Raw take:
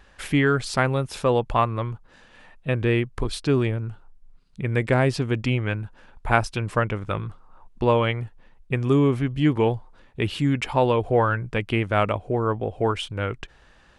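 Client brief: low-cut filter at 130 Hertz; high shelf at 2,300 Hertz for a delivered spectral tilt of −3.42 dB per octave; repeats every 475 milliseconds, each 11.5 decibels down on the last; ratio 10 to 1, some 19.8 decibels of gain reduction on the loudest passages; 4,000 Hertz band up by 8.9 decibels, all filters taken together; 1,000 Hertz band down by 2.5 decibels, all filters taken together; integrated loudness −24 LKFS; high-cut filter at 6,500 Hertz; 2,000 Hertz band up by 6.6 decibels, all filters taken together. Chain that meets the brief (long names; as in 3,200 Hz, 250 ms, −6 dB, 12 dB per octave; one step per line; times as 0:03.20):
high-pass filter 130 Hz
low-pass filter 6,500 Hz
parametric band 1,000 Hz −7 dB
parametric band 2,000 Hz +6 dB
high-shelf EQ 2,300 Hz +7 dB
parametric band 4,000 Hz +4 dB
downward compressor 10 to 1, threshold −33 dBFS
repeating echo 475 ms, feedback 27%, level −11.5 dB
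level +13.5 dB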